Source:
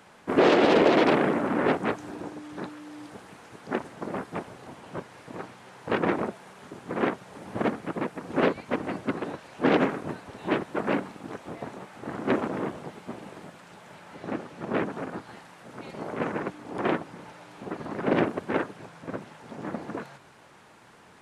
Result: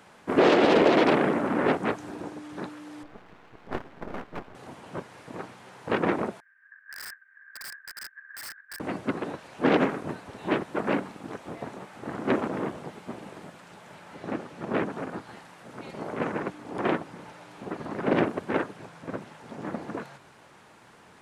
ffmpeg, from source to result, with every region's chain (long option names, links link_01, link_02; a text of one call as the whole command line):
ffmpeg -i in.wav -filter_complex "[0:a]asettb=1/sr,asplit=3[link_01][link_02][link_03];[link_01]atrim=end=3.034[link_04];[link_02]atrim=start=3.03:end=4.55,asetpts=PTS-STARTPTS,afade=type=in:duration=0.004:curve=qsin,afade=type=out:start_time=1.516:duration=0.004:curve=qsin,lowpass=2400,aeval=exprs='max(val(0),0)':channel_layout=same[link_05];[link_03]atrim=start=4.546[link_06];[link_04][link_05]acrossfade=duration=0.004:curve1=hsin:curve2=qsin[link_07];[link_07][link_06]acrossfade=duration=0.004:curve1=qsin:curve2=hsin,asettb=1/sr,asplit=3[link_08][link_09][link_10];[link_08]atrim=end=6.404[link_11];[link_09]atrim=start=6.4:end=8.8,asetpts=PTS-STARTPTS,afade=type=in:duration=0.004:curve=qsin,afade=type=out:start_time=2.396:duration=0.004:curve=qsin,aeval=exprs='val(0)*sin(2*PI*1400*n/s)':channel_layout=same,asuperpass=centerf=1600:order=4:qfactor=6.7,aeval=exprs='(mod(53.1*val(0)+1,2)-1)/53.1':channel_layout=same[link_12];[link_10]atrim=start=8.796[link_13];[link_11][link_12]acrossfade=duration=0.004:curve1=hsin:curve2=qsin[link_14];[link_14][link_13]acrossfade=duration=0.004:curve1=qsin:curve2=hsin" out.wav